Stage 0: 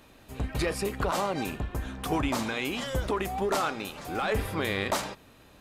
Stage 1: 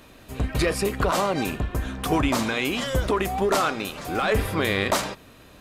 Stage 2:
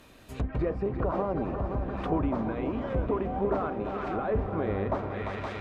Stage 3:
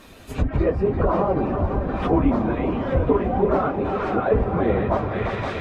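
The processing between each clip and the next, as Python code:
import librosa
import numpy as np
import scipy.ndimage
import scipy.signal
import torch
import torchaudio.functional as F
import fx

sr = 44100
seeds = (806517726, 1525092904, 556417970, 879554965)

y1 = fx.notch(x, sr, hz=840.0, q=12.0)
y1 = y1 * 10.0 ** (6.0 / 20.0)
y2 = fx.echo_heads(y1, sr, ms=173, heads='second and third', feedback_pct=68, wet_db=-10)
y2 = fx.env_lowpass_down(y2, sr, base_hz=890.0, full_db=-21.0)
y2 = y2 * 10.0 ** (-5.0 / 20.0)
y3 = fx.phase_scramble(y2, sr, seeds[0], window_ms=50)
y3 = y3 * 10.0 ** (8.5 / 20.0)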